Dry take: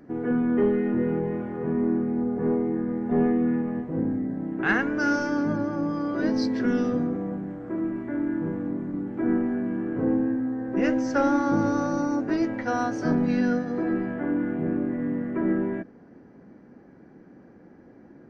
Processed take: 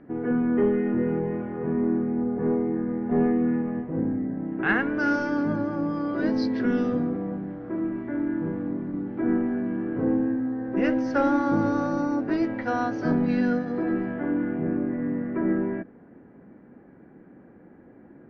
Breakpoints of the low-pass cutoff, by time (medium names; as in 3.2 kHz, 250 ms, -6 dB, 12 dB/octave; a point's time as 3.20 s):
low-pass 24 dB/octave
4.46 s 3.1 kHz
5.08 s 4.7 kHz
14.26 s 4.7 kHz
14.67 s 2.8 kHz